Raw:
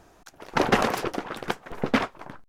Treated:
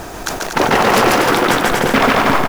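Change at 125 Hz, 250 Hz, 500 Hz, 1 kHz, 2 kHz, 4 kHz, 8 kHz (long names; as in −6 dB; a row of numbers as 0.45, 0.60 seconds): +12.0, +11.5, +13.5, +15.0, +15.0, +15.0, +18.0 decibels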